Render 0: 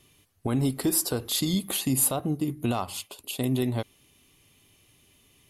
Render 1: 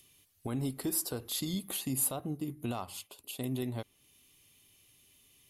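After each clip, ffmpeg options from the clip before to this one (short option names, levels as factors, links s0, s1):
-filter_complex "[0:a]equalizer=f=14000:t=o:w=0.55:g=4.5,acrossover=split=2400[s0][s1];[s1]acompressor=mode=upward:threshold=0.00447:ratio=2.5[s2];[s0][s2]amix=inputs=2:normalize=0,volume=0.355"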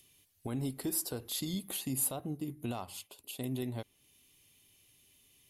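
-af "equalizer=f=1200:t=o:w=0.34:g=-3.5,volume=0.841"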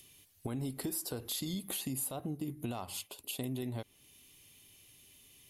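-filter_complex "[0:a]asplit=2[s0][s1];[s1]alimiter=level_in=2.11:limit=0.0631:level=0:latency=1:release=30,volume=0.473,volume=0.841[s2];[s0][s2]amix=inputs=2:normalize=0,acompressor=threshold=0.0178:ratio=4"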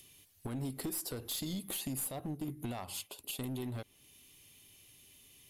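-af "aeval=exprs='clip(val(0),-1,0.0178)':c=same"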